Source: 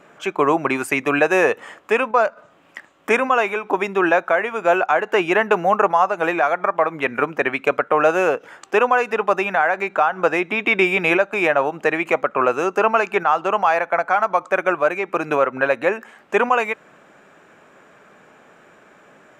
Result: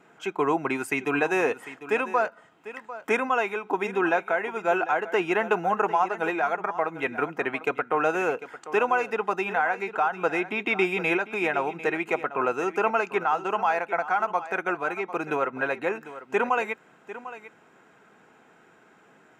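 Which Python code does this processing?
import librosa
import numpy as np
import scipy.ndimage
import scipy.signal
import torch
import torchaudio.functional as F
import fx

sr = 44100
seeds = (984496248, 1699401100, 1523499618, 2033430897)

y = fx.notch_comb(x, sr, f0_hz=580.0)
y = y + 10.0 ** (-14.5 / 20.0) * np.pad(y, (int(748 * sr / 1000.0), 0))[:len(y)]
y = F.gain(torch.from_numpy(y), -6.0).numpy()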